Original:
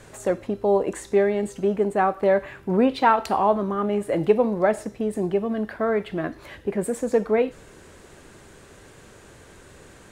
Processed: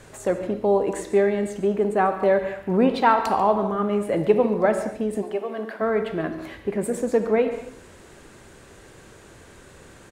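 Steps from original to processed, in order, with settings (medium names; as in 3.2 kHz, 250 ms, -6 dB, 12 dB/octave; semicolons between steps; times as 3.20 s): 5.21–5.80 s: high-pass 580 Hz -> 190 Hz 24 dB/octave; delay 141 ms -16 dB; on a send at -9 dB: reverberation, pre-delay 43 ms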